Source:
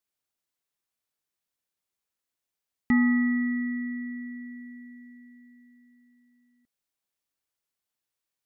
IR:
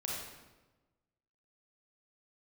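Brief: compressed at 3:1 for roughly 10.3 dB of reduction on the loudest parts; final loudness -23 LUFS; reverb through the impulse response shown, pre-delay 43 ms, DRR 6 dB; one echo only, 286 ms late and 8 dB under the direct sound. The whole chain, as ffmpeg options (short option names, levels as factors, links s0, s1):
-filter_complex "[0:a]acompressor=threshold=0.0224:ratio=3,aecho=1:1:286:0.398,asplit=2[s0][s1];[1:a]atrim=start_sample=2205,adelay=43[s2];[s1][s2]afir=irnorm=-1:irlink=0,volume=0.398[s3];[s0][s3]amix=inputs=2:normalize=0,volume=4.22"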